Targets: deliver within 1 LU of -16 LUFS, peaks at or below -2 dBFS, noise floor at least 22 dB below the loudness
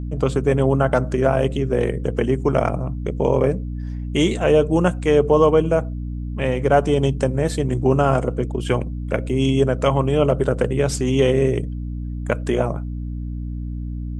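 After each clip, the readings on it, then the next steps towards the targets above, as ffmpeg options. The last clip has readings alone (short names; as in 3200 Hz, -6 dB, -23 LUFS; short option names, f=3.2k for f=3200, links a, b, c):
hum 60 Hz; harmonics up to 300 Hz; hum level -25 dBFS; loudness -20.5 LUFS; peak -2.5 dBFS; loudness target -16.0 LUFS
-> -af "bandreject=f=60:t=h:w=4,bandreject=f=120:t=h:w=4,bandreject=f=180:t=h:w=4,bandreject=f=240:t=h:w=4,bandreject=f=300:t=h:w=4"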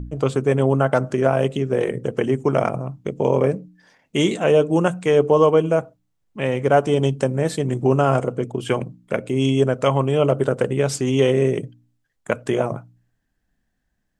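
hum none; loudness -20.0 LUFS; peak -3.0 dBFS; loudness target -16.0 LUFS
-> -af "volume=4dB,alimiter=limit=-2dB:level=0:latency=1"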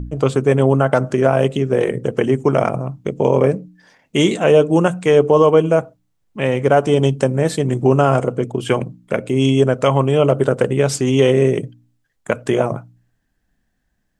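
loudness -16.5 LUFS; peak -2.0 dBFS; noise floor -68 dBFS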